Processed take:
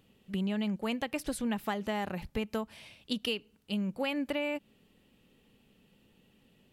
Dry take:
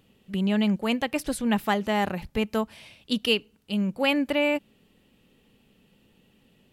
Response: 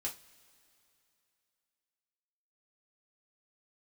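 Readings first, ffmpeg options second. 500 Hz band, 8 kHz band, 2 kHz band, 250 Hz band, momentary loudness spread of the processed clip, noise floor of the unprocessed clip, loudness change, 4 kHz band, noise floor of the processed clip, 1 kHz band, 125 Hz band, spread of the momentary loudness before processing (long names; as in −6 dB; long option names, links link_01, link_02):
−8.5 dB, −6.0 dB, −9.5 dB, −8.0 dB, 6 LU, −63 dBFS, −8.5 dB, −8.5 dB, −67 dBFS, −9.0 dB, −7.5 dB, 7 LU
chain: -af "acompressor=threshold=-25dB:ratio=10,volume=-3.5dB"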